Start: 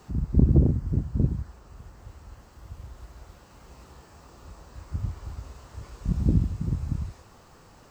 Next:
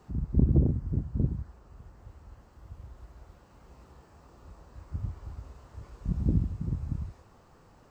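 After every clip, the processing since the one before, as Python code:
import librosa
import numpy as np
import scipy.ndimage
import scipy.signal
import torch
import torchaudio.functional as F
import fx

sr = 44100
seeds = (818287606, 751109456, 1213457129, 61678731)

y = fx.high_shelf(x, sr, hz=2100.0, db=-8.0)
y = y * librosa.db_to_amplitude(-4.0)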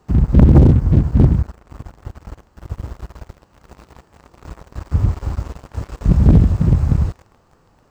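y = fx.leveller(x, sr, passes=3)
y = y * librosa.db_to_amplitude(8.0)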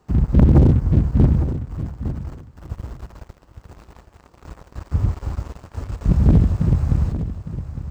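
y = fx.echo_feedback(x, sr, ms=858, feedback_pct=17, wet_db=-11.5)
y = y * librosa.db_to_amplitude(-3.5)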